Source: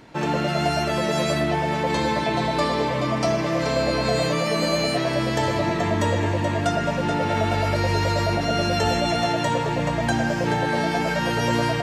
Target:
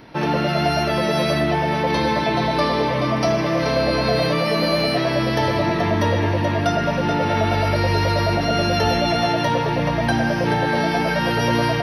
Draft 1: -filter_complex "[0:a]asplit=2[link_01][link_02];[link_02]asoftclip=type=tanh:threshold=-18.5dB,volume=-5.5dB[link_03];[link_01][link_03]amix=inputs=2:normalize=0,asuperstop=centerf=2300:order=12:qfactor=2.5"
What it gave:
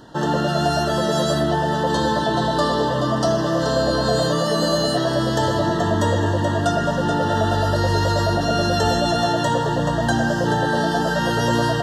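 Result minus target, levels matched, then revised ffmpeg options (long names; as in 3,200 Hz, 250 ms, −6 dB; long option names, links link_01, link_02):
8,000 Hz band +6.0 dB
-filter_complex "[0:a]asplit=2[link_01][link_02];[link_02]asoftclip=type=tanh:threshold=-18.5dB,volume=-5.5dB[link_03];[link_01][link_03]amix=inputs=2:normalize=0,asuperstop=centerf=7500:order=12:qfactor=2.5"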